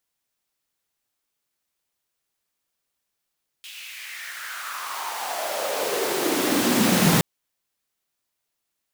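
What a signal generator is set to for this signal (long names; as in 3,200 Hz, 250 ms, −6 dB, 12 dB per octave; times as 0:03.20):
filter sweep on noise pink, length 3.57 s highpass, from 3,000 Hz, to 160 Hz, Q 3.9, exponential, gain ramp +21 dB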